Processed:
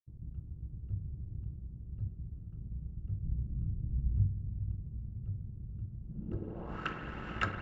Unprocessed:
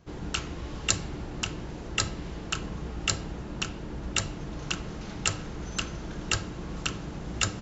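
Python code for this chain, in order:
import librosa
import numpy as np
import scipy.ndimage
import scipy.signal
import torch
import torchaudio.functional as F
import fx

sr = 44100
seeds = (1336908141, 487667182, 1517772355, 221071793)

y = fx.low_shelf(x, sr, hz=340.0, db=7.5, at=(3.23, 4.27))
y = fx.echo_diffused(y, sr, ms=465, feedback_pct=60, wet_db=-8.5)
y = np.sign(y) * np.maximum(np.abs(y) - 10.0 ** (-42.0 / 20.0), 0.0)
y = fx.rev_spring(y, sr, rt60_s=3.7, pass_ms=(51,), chirp_ms=30, drr_db=8.5)
y = fx.filter_sweep_lowpass(y, sr, from_hz=110.0, to_hz=1700.0, start_s=6.02, end_s=6.88, q=1.8)
y = F.gain(torch.from_numpy(y), -4.0).numpy()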